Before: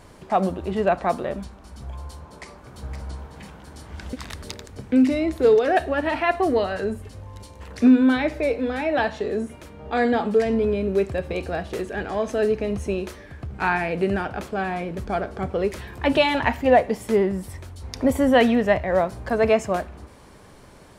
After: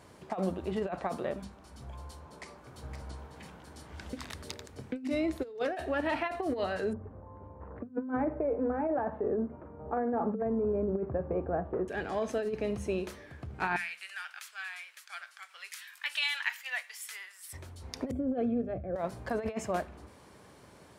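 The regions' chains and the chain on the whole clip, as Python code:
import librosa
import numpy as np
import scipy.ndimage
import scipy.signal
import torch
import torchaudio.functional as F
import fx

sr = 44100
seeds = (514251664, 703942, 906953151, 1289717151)

y = fx.chain(x, sr, fx.cheby2_lowpass(hz=6900.0, order=4, stop_db=80),
    fx.over_compress(threshold_db=-22.0, ratio=-0.5), at=(6.93, 11.88))
y = fx.chain(y, sr, fx.highpass(hz=1500.0, slope=24),
    fx.high_shelf(hz=5000.0, db=7.5), at=(13.76, 17.53))
y = fx.chain(y, sr, fx.moving_average(points=46),
    fx.notch_comb(f0_hz=210.0), at=(18.11, 18.96))
y = scipy.signal.sosfilt(scipy.signal.butter(2, 74.0, 'highpass', fs=sr, output='sos'), y)
y = fx.hum_notches(y, sr, base_hz=50, count=5)
y = fx.over_compress(y, sr, threshold_db=-22.0, ratio=-0.5)
y = F.gain(torch.from_numpy(y), -8.0).numpy()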